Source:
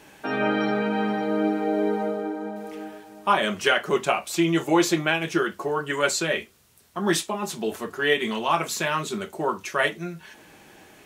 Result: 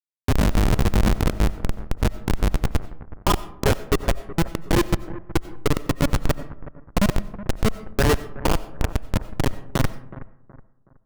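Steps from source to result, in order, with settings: expander on every frequency bin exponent 2; recorder AGC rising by 48 dB/s; level-controlled noise filter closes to 710 Hz, open at -22.5 dBFS; in parallel at -2 dB: compression 4:1, threshold -38 dBFS, peak gain reduction 18.5 dB; on the sum: bit crusher 5-bit; Schmitt trigger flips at -16 dBFS; bucket-brigade echo 371 ms, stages 4096, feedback 34%, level -16.5 dB; algorithmic reverb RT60 0.77 s, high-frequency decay 0.4×, pre-delay 50 ms, DRR 16 dB; trim +8 dB

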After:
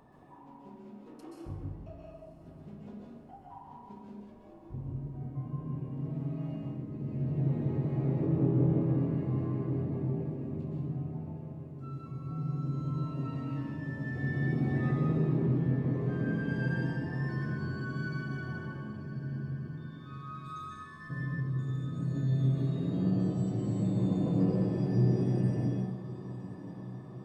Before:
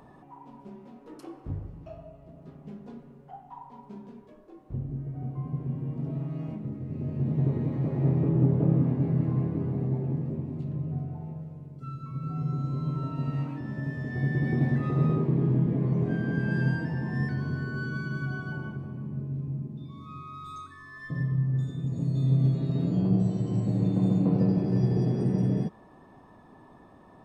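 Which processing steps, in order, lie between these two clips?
on a send: echo that smears into a reverb 1075 ms, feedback 61%, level -15 dB; on the sum: plate-style reverb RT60 0.75 s, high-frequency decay 0.95×, pre-delay 115 ms, DRR -2 dB; trim -7 dB

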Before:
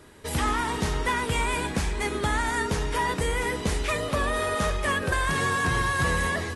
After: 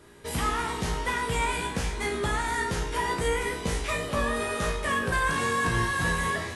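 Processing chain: feedback comb 58 Hz, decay 0.44 s, harmonics all, mix 90%; trim +6.5 dB

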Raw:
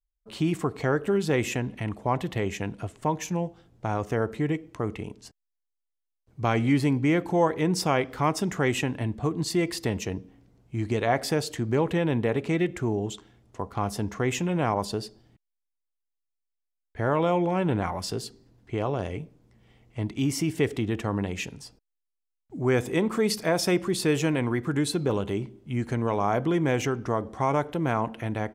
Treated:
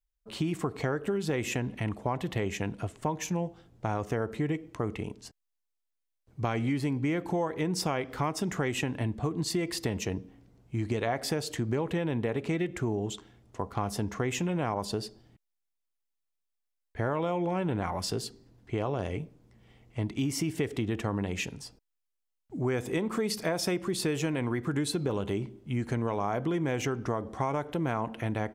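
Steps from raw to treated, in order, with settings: compression, threshold -26 dBFS, peak gain reduction 9.5 dB

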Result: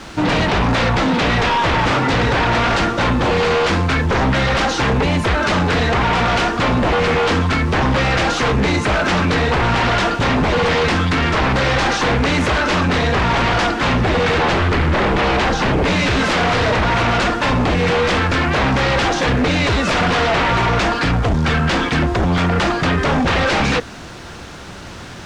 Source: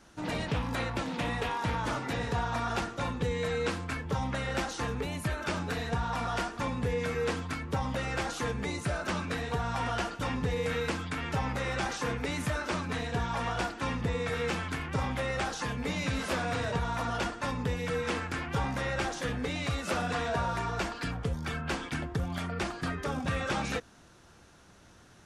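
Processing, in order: 14.38–15.84 s: tilt EQ -2 dB/octave; in parallel at -4 dB: word length cut 8-bit, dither triangular; on the sum: sine folder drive 15 dB, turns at -12 dBFS; distance through air 120 m

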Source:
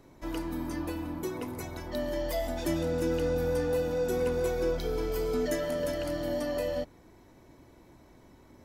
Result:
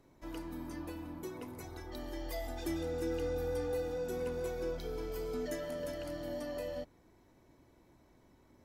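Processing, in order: 1.64–3.97 s: comb 2.5 ms, depth 61%; trim -8.5 dB

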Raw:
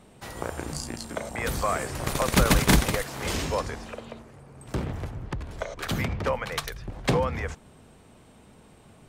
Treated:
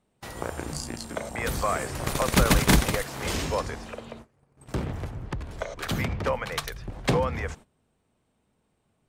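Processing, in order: gate -44 dBFS, range -19 dB

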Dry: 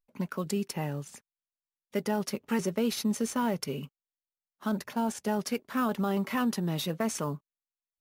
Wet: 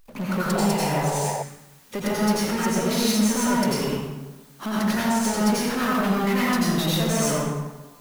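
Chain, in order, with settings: compression, threshold -31 dBFS, peak gain reduction 7.5 dB; power-law waveshaper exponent 0.5; plate-style reverb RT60 1.2 s, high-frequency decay 0.65×, pre-delay 75 ms, DRR -7 dB; painted sound noise, 0.55–1.43 s, 390–1000 Hz -28 dBFS

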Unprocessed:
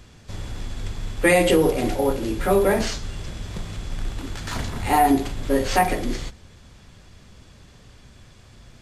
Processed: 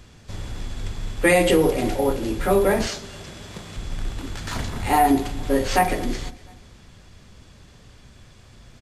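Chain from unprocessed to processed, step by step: 2.86–3.76 s: high-pass 200 Hz 6 dB/octave; feedback delay 235 ms, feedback 50%, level -22 dB

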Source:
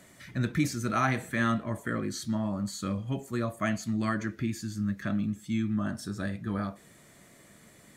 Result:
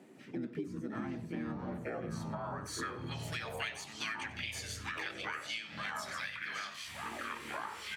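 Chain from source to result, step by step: band-pass sweep 260 Hz -> 2.4 kHz, 1.39–3.36 s; harmony voices +5 st -5 dB; tilt EQ +3.5 dB/octave; ever faster or slower copies 149 ms, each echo -6 st, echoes 3, each echo -6 dB; echo from a far wall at 16 m, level -17 dB; compression 6:1, threshold -48 dBFS, peak gain reduction 17.5 dB; trim +11 dB

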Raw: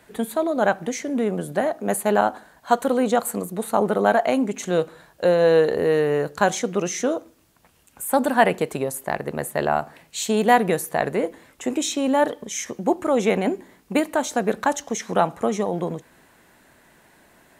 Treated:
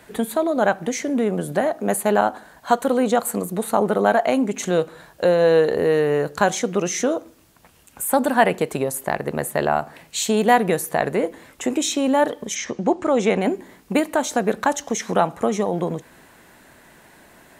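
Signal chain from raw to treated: 12.54–13.39 s: low-pass 5.5 kHz -> 9.8 kHz 24 dB/octave; in parallel at +0.5 dB: compression, threshold -28 dBFS, peak gain reduction 16.5 dB; on the sum: trim -1 dB

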